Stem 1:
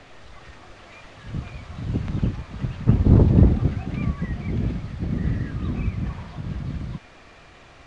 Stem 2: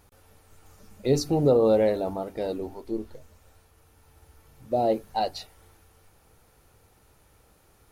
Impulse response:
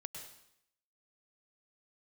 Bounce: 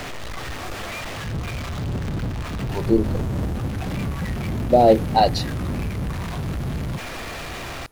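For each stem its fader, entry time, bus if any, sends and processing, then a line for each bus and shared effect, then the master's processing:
-7.5 dB, 0.00 s, no send, compressor 2.5:1, threshold -25 dBFS, peak gain reduction 11.5 dB; power-law curve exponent 0.35
-1.5 dB, 0.00 s, muted 0.89–2.69, no send, AGC gain up to 14.5 dB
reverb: off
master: dry

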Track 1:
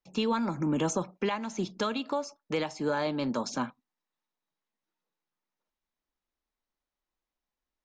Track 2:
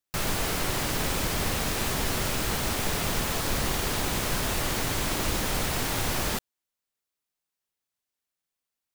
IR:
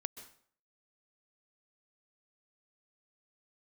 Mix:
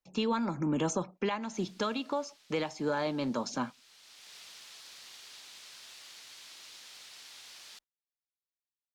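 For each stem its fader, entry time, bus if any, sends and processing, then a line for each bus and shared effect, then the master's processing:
-2.0 dB, 0.00 s, no send, dry
-14.0 dB, 1.40 s, no send, band-pass 4300 Hz, Q 1.3; auto duck -13 dB, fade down 2.00 s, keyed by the first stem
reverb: off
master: dry

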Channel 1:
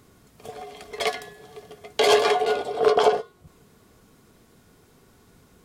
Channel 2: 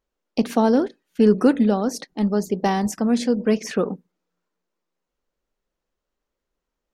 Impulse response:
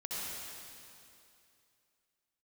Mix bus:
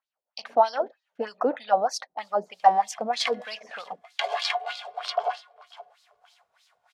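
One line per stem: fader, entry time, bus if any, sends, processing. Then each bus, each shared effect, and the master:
+2.5 dB, 2.20 s, no send, echo send -21 dB, passive tone stack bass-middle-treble 10-0-10
+0.5 dB, 0.00 s, no send, no echo send, dry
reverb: off
echo: feedback echo 0.531 s, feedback 24%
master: resonant low shelf 490 Hz -11.5 dB, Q 3; AGC gain up to 6 dB; LFO band-pass sine 3.2 Hz 310–4600 Hz

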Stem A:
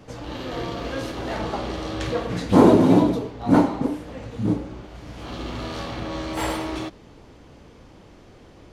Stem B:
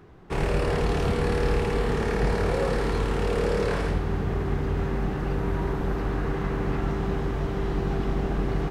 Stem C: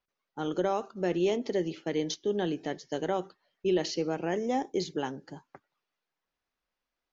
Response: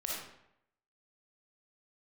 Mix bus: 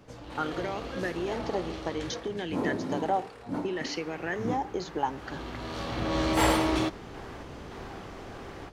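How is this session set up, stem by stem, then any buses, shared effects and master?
-7.5 dB, 0.00 s, no send, AGC gain up to 11.5 dB; auto duck -12 dB, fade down 0.70 s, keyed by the third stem
-9.0 dB, 0.00 s, no send, HPF 630 Hz 12 dB/oct; negative-ratio compressor -37 dBFS, ratio -1; random-step tremolo
+2.5 dB, 0.00 s, no send, compressor, threshold -34 dBFS, peak gain reduction 11.5 dB; LFO bell 0.62 Hz 750–2300 Hz +15 dB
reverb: off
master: dry

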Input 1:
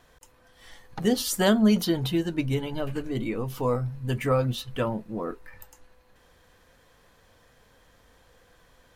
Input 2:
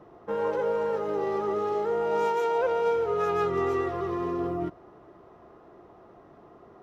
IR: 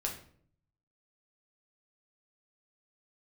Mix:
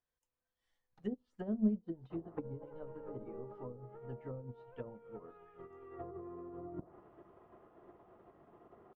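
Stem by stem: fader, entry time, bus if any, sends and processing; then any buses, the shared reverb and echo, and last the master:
-9.0 dB, 0.00 s, send -23 dB, echo send -21.5 dB, dry
0.0 dB, 2.10 s, send -11 dB, no echo send, steep low-pass 3500 Hz 72 dB/oct; negative-ratio compressor -38 dBFS, ratio -1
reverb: on, RT60 0.55 s, pre-delay 6 ms
echo: echo 0.75 s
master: treble ducked by the level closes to 410 Hz, closed at -27.5 dBFS; upward expander 2.5:1, over -43 dBFS

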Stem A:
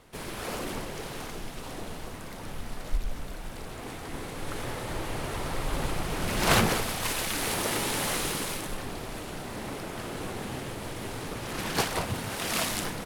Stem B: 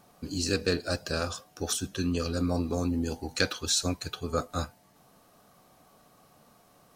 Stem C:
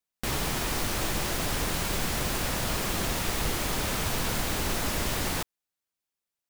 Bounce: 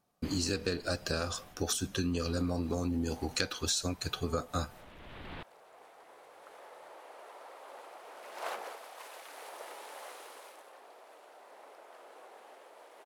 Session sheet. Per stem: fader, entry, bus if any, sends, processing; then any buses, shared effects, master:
-14.5 dB, 1.95 s, no send, HPF 570 Hz 24 dB/oct; tilt shelf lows +8.5 dB, about 1200 Hz
+3.0 dB, 0.00 s, no send, gate with hold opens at -47 dBFS
-7.5 dB, 0.00 s, no send, steep low-pass 3600 Hz; limiter -27.5 dBFS, peak gain reduction 9.5 dB; auto duck -15 dB, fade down 1.65 s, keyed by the second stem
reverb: off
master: compressor 6:1, threshold -29 dBFS, peak gain reduction 11.5 dB

